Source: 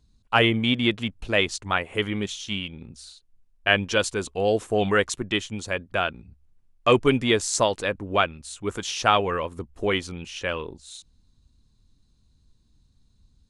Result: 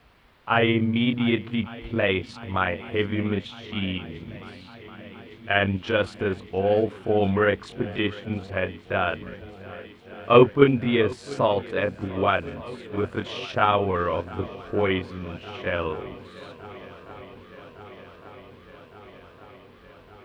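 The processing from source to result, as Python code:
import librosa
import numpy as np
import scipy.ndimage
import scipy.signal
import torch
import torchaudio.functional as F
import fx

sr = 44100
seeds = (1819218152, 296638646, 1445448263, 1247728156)

p1 = scipy.signal.sosfilt(scipy.signal.butter(2, 50.0, 'highpass', fs=sr, output='sos'), x)
p2 = fx.high_shelf(p1, sr, hz=8300.0, db=8.5)
p3 = fx.notch(p2, sr, hz=780.0, q=23.0)
p4 = fx.level_steps(p3, sr, step_db=16)
p5 = p3 + (p4 * librosa.db_to_amplitude(2.0))
p6 = fx.stretch_grains(p5, sr, factor=1.5, grain_ms=128.0)
p7 = fx.quant_dither(p6, sr, seeds[0], bits=8, dither='triangular')
p8 = fx.air_absorb(p7, sr, metres=440.0)
y = p8 + fx.echo_swing(p8, sr, ms=1160, ratio=1.5, feedback_pct=73, wet_db=-20.0, dry=0)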